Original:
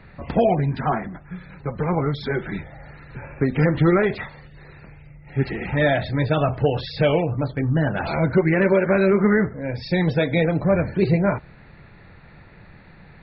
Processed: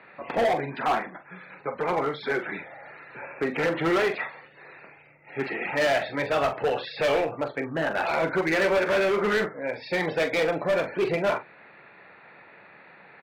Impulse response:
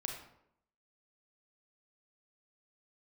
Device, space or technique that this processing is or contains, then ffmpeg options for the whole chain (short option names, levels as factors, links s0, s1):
megaphone: -filter_complex "[0:a]highpass=460,lowpass=2700,equalizer=f=2500:t=o:w=0.24:g=4.5,asoftclip=type=hard:threshold=0.0794,asplit=2[s0][s1];[s1]adelay=43,volume=0.316[s2];[s0][s2]amix=inputs=2:normalize=0,volume=1.26"